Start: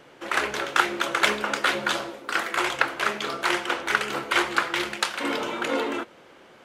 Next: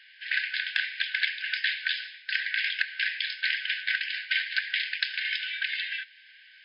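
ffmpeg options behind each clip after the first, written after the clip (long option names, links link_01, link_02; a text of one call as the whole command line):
ffmpeg -i in.wav -af "afftfilt=real='re*between(b*sr/4096,1500,5200)':imag='im*between(b*sr/4096,1500,5200)':win_size=4096:overlap=0.75,acompressor=threshold=-28dB:ratio=5,volume=4dB" out.wav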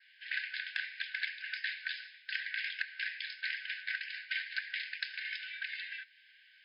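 ffmpeg -i in.wav -af "adynamicequalizer=threshold=0.00562:dfrequency=3200:dqfactor=3.2:tfrequency=3200:tqfactor=3.2:attack=5:release=100:ratio=0.375:range=3:mode=cutabove:tftype=bell,volume=-8.5dB" out.wav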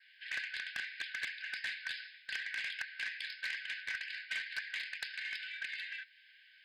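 ffmpeg -i in.wav -af "asoftclip=type=tanh:threshold=-30dB" out.wav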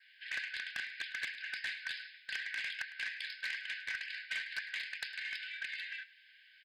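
ffmpeg -i in.wav -af "aecho=1:1:105:0.106" out.wav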